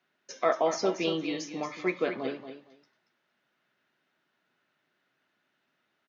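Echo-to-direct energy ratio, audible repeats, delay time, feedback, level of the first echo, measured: -10.0 dB, 2, 0.231 s, 17%, -10.0 dB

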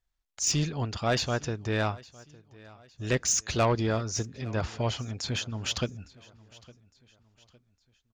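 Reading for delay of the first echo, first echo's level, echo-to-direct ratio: 0.859 s, -22.5 dB, -21.5 dB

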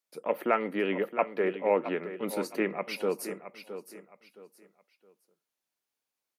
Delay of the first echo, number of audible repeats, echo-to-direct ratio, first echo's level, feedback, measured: 0.667 s, 3, -11.0 dB, -11.5 dB, 29%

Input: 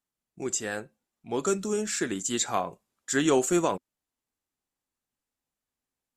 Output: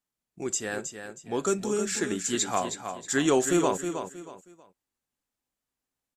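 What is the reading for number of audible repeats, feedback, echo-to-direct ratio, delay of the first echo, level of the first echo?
3, 29%, -7.5 dB, 0.317 s, -8.0 dB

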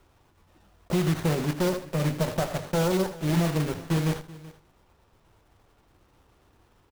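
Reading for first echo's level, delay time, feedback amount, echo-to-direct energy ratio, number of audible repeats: -12.5 dB, 80 ms, no steady repeat, -11.5 dB, 3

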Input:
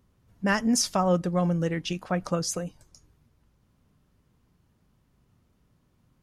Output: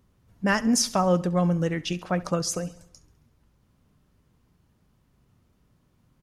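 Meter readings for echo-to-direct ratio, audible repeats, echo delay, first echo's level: -17.5 dB, 4, 68 ms, -19.0 dB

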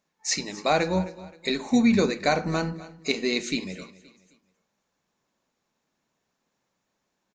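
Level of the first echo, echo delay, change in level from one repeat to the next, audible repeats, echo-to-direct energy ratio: -18.0 dB, 0.262 s, -9.0 dB, 2, -17.5 dB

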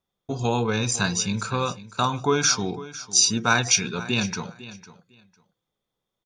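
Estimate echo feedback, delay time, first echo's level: 18%, 0.502 s, -16.5 dB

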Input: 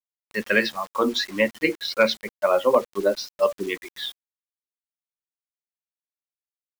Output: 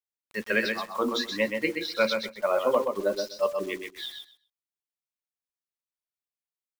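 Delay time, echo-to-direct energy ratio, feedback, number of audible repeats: 0.127 s, -5.5 dB, 16%, 2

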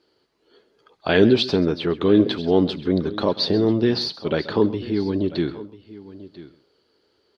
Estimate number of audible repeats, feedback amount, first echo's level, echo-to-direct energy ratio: 2, no steady repeat, -17.5 dB, -14.5 dB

